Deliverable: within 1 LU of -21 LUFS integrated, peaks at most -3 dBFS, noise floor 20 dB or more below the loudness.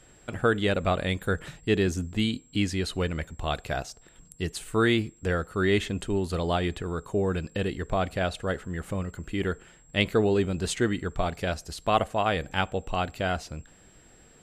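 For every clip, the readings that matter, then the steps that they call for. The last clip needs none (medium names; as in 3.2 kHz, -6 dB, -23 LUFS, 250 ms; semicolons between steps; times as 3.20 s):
steady tone 7.6 kHz; tone level -58 dBFS; loudness -28.0 LUFS; peak level -7.5 dBFS; loudness target -21.0 LUFS
-> band-stop 7.6 kHz, Q 30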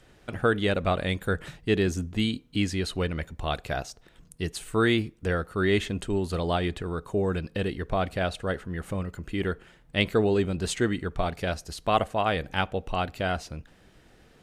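steady tone not found; loudness -28.5 LUFS; peak level -7.5 dBFS; loudness target -21.0 LUFS
-> trim +7.5 dB; peak limiter -3 dBFS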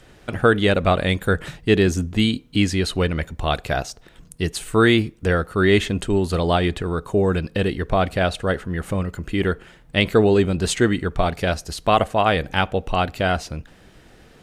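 loudness -21.0 LUFS; peak level -3.0 dBFS; noise floor -50 dBFS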